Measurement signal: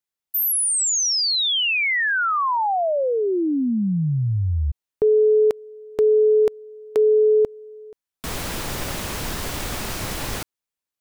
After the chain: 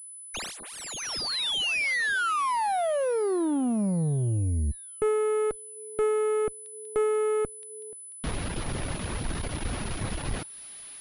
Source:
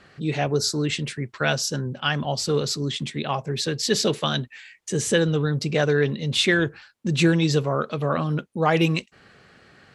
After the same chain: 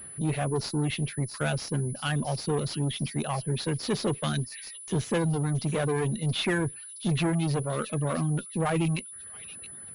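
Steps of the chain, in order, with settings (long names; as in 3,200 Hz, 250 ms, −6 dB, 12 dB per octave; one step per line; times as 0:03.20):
low-shelf EQ 320 Hz +8.5 dB
on a send: delay with a high-pass on its return 672 ms, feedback 41%, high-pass 3,800 Hz, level −9 dB
on the sum: tube saturation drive 18 dB, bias 0.3
reverb reduction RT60 0.69 s
switching amplifier with a slow clock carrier 10,000 Hz
level −3.5 dB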